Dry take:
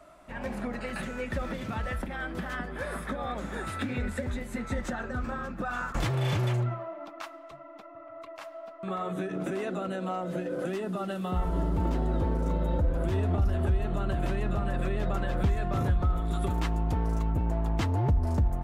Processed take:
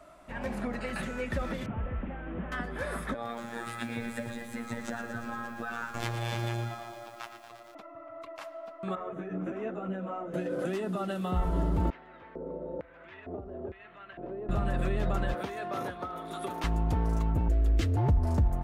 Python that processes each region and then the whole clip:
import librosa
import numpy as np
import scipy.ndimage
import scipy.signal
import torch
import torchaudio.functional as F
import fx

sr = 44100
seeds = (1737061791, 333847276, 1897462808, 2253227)

y = fx.chain(x, sr, fx.delta_mod(bps=16000, step_db=-50.0),
    fx.air_absorb(metres=83.0), at=(1.66, 2.52))
y = fx.chain(y, sr, fx.robotise(hz=117.0),
    fx.low_shelf(hz=130.0, db=-9.0),
    fx.echo_crushed(ms=116, feedback_pct=80, bits=9, wet_db=-9.5), at=(3.14, 7.75))
y = fx.chain(y, sr, fx.moving_average(points=10),
    fx.ensemble(), at=(8.95, 10.34))
y = fx.chain(y, sr, fx.air_absorb(metres=160.0),
    fx.filter_lfo_bandpass(shape='square', hz=1.1, low_hz=450.0, high_hz=2100.0, q=2.3), at=(11.9, 14.49))
y = fx.chain(y, sr, fx.highpass(hz=350.0, slope=12),
    fx.notch(hz=7500.0, q=6.2), at=(15.34, 16.64))
y = fx.chain(y, sr, fx.low_shelf(hz=110.0, db=8.0),
    fx.fixed_phaser(hz=380.0, stages=4), at=(17.48, 17.97))